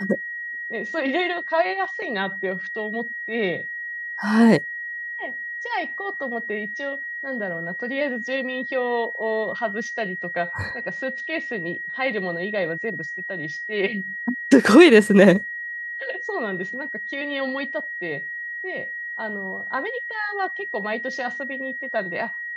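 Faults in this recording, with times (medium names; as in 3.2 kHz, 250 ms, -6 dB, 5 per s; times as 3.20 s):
whine 1.9 kHz -29 dBFS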